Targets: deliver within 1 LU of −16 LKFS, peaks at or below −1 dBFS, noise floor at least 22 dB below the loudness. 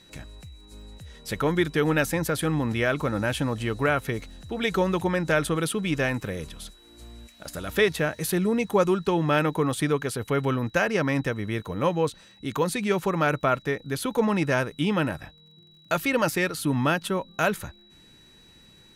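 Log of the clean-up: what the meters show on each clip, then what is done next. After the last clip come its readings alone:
crackle rate 45 per second; interfering tone 3,900 Hz; level of the tone −54 dBFS; integrated loudness −25.5 LKFS; sample peak −9.5 dBFS; target loudness −16.0 LKFS
→ click removal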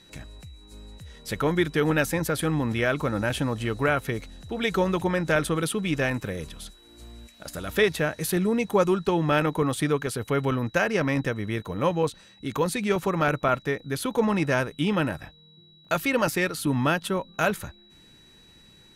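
crackle rate 0.16 per second; interfering tone 3,900 Hz; level of the tone −54 dBFS
→ notch filter 3,900 Hz, Q 30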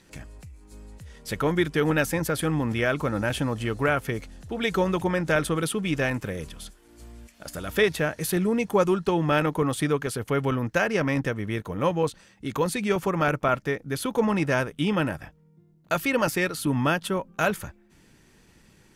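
interfering tone none found; integrated loudness −25.5 LKFS; sample peak −9.5 dBFS; target loudness −16.0 LKFS
→ level +9.5 dB
brickwall limiter −1 dBFS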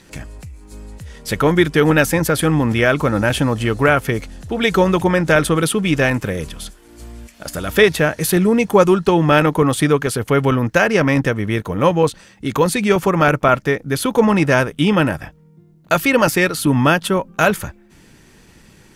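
integrated loudness −16.0 LKFS; sample peak −1.0 dBFS; background noise floor −49 dBFS

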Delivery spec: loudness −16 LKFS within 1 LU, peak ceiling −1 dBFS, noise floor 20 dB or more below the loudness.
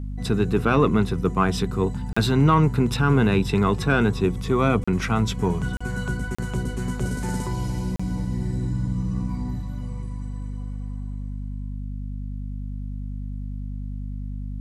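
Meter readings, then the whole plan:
number of dropouts 5; longest dropout 35 ms; mains hum 50 Hz; hum harmonics up to 250 Hz; level of the hum −28 dBFS; integrated loudness −24.5 LKFS; sample peak −6.5 dBFS; target loudness −16.0 LKFS
→ repair the gap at 0:02.13/0:04.84/0:05.77/0:06.35/0:07.96, 35 ms
hum removal 50 Hz, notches 5
level +8.5 dB
brickwall limiter −1 dBFS

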